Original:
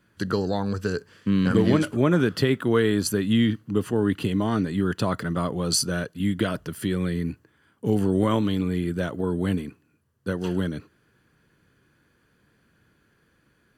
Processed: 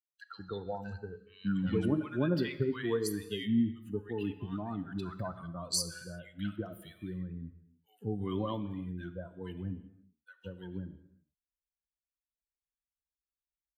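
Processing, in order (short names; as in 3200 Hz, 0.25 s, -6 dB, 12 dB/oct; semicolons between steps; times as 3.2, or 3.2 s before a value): per-bin expansion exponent 2; bands offset in time highs, lows 0.18 s, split 1300 Hz; non-linear reverb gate 0.39 s falling, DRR 11 dB; gain -6.5 dB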